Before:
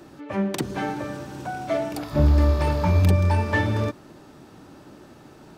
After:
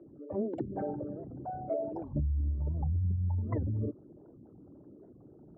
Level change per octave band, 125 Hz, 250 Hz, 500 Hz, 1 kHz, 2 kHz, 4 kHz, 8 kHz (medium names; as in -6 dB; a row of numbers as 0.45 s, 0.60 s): -10.5 dB, -11.0 dB, -10.0 dB, -14.0 dB, under -30 dB, under -40 dB, under -35 dB